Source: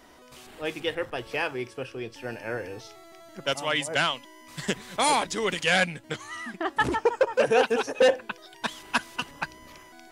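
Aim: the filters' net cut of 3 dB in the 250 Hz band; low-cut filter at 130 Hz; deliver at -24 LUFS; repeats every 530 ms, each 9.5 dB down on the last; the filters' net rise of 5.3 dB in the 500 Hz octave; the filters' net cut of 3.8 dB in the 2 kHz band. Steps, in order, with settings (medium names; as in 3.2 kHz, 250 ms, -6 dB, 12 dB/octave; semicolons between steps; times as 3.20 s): high-pass 130 Hz; peaking EQ 250 Hz -7 dB; peaking EQ 500 Hz +7.5 dB; peaking EQ 2 kHz -5.5 dB; feedback delay 530 ms, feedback 33%, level -9.5 dB; trim +0.5 dB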